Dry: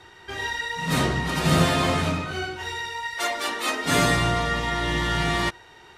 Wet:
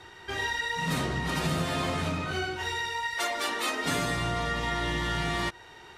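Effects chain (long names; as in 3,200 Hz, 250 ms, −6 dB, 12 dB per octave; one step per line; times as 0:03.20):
downward compressor 6 to 1, threshold −26 dBFS, peak gain reduction 11.5 dB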